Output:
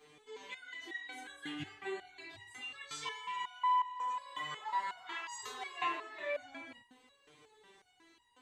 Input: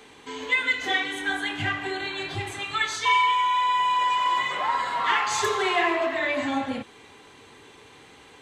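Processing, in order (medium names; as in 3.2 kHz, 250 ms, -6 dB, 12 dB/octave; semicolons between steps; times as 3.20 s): resonator arpeggio 5.5 Hz 150–950 Hz; trim -1 dB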